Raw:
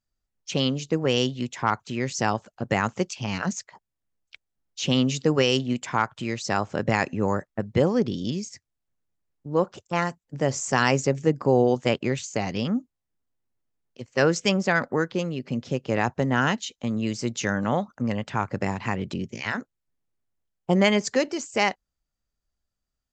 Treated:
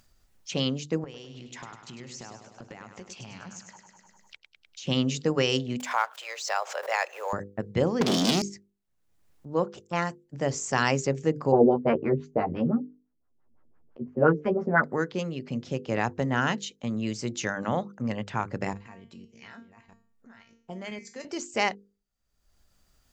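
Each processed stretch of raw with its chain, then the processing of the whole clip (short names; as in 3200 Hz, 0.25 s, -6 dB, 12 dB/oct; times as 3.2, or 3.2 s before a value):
1.04–4.87 compressor 16:1, threshold -35 dBFS + feedback echo 0.101 s, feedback 55%, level -8 dB
5.8–7.33 G.711 law mismatch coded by mu + steep high-pass 510 Hz 48 dB/oct + backwards sustainer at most 130 dB/s
8.01–8.42 sample leveller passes 5 + HPF 240 Hz + bell 5700 Hz +6 dB 1.7 oct
11.52–14.84 LFO low-pass sine 5.9 Hz 250–1500 Hz + doubler 13 ms -2.5 dB
18.73–21.25 reverse delay 0.602 s, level -11 dB + level quantiser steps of 11 dB + resonator 230 Hz, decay 0.37 s, mix 80%
whole clip: notches 50/100/150/200/250/300/350/400/450/500 Hz; upward compressor, threshold -42 dBFS; gain -3 dB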